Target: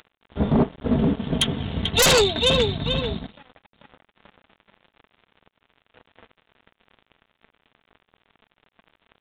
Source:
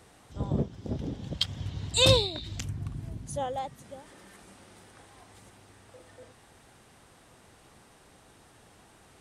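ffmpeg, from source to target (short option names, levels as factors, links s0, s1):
-filter_complex "[0:a]aecho=1:1:4.5:0.79,acompressor=mode=upward:threshold=0.00501:ratio=2.5,flanger=delay=6.5:depth=4.1:regen=-33:speed=1.4:shape=triangular,aecho=1:1:440|880|1320|1760|2200:0.376|0.158|0.0663|0.0278|0.0117,asettb=1/sr,asplit=3[s0][s1][s2];[s0]atrim=end=3.264[s3];[s1]atrim=start=3.26:end=5.97,asetpts=PTS-STARTPTS,afade=t=in:d=0.004:c=qsin,afade=t=out:st=2.706:d=0.004:c=qsin,acompressor=threshold=0.00316:ratio=8[s4];[s2]atrim=start=5.966[s5];[s3][s4]acrossfade=d=0.004:c1=hsin:c2=qsin[s6];[s6][s5]acrossfade=d=0.004:c1=qsin:c2=hsin,aeval=exprs='sgn(val(0))*max(abs(val(0))-0.00376,0)':c=same,aresample=8000,aresample=44100,aeval=exprs='0.237*sin(PI/2*4.47*val(0)/0.237)':c=same"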